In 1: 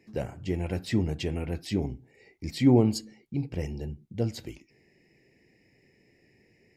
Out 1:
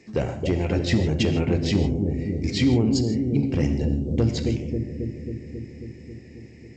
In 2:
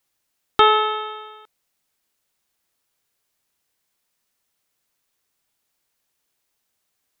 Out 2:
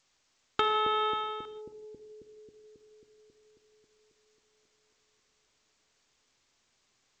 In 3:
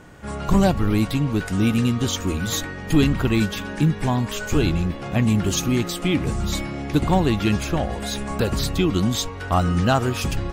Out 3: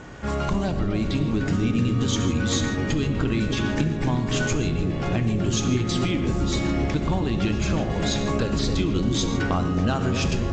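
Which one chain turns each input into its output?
dynamic bell 720 Hz, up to -3 dB, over -34 dBFS, Q 2.1; compression 12:1, threshold -26 dBFS; one-sided clip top -22.5 dBFS; on a send: bucket-brigade echo 270 ms, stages 1024, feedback 74%, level -4 dB; on the sum: gated-style reverb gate 180 ms flat, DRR 8.5 dB; G.722 64 kbps 16 kHz; peak normalisation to -9 dBFS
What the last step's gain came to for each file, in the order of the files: +9.0 dB, +2.5 dB, +5.0 dB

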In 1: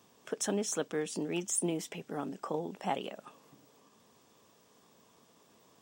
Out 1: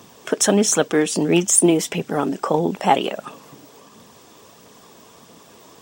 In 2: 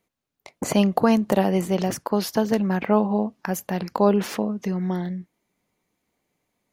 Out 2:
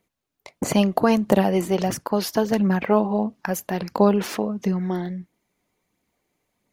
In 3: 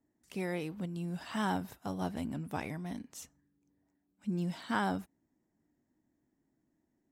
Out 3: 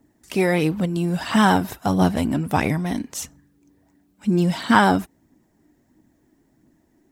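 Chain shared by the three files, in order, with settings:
phaser 1.5 Hz, delay 3.3 ms, feedback 32%; peak normalisation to -2 dBFS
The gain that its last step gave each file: +16.5 dB, +1.0 dB, +16.5 dB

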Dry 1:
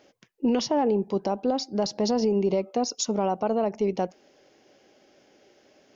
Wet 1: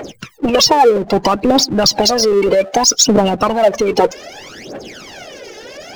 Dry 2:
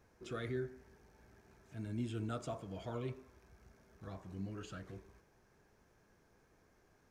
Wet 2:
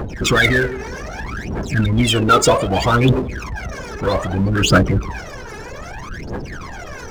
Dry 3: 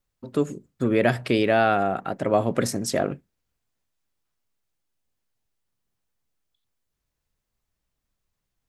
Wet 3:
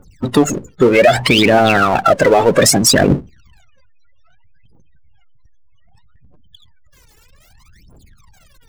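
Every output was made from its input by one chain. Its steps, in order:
phaser 0.63 Hz, delay 2.4 ms, feedback 73%; harmonic-percussive split harmonic -13 dB; peak limiter -17.5 dBFS; spectral gate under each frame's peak -25 dB strong; power-law waveshaper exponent 0.7; peak normalisation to -1.5 dBFS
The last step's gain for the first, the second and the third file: +16.0 dB, +29.0 dB, +15.5 dB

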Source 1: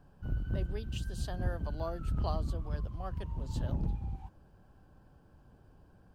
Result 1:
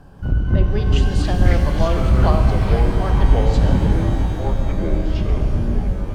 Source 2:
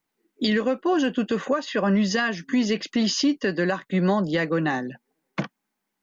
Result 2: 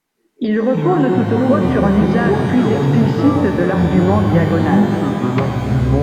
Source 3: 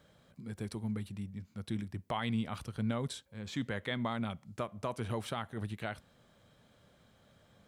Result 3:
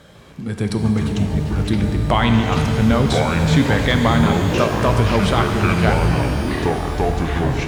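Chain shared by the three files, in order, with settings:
low-pass that closes with the level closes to 1.3 kHz, closed at -24 dBFS; ever faster or slower copies 150 ms, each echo -6 st, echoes 3; pitch-shifted reverb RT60 3.5 s, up +12 st, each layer -8 dB, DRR 4.5 dB; peak normalisation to -1.5 dBFS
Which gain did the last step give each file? +15.5 dB, +6.5 dB, +18.0 dB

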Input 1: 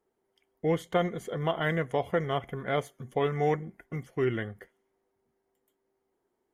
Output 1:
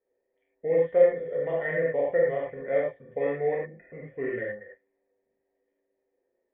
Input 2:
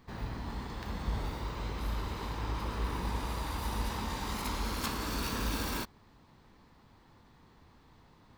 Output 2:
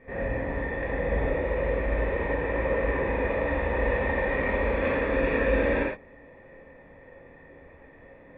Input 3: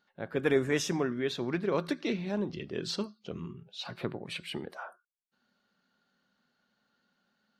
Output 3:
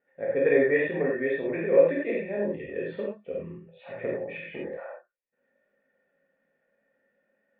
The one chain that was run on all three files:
cascade formant filter e; gated-style reverb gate 130 ms flat, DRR -5 dB; normalise loudness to -27 LUFS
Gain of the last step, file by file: +5.5 dB, +20.0 dB, +11.0 dB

